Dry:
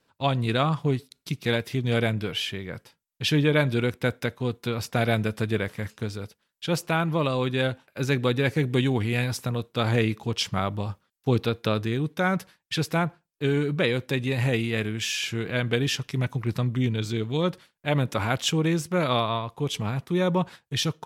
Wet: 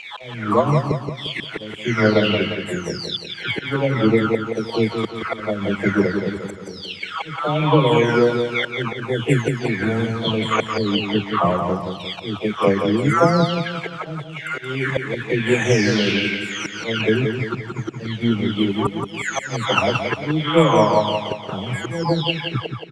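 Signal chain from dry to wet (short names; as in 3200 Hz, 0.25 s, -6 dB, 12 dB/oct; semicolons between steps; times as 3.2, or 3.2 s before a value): spectral delay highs early, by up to 0.803 s; HPF 190 Hz 6 dB/oct; auto swell 0.457 s; AGC gain up to 4.5 dB; transient shaper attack +5 dB, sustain -6 dB; in parallel at -8 dB: bit-crush 7-bit; on the sum: air absorption 88 m; on a send: feedback echo 0.161 s, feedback 46%, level -6 dB; on the sum: speed mistake 48 kHz file played as 44.1 kHz; gain +4 dB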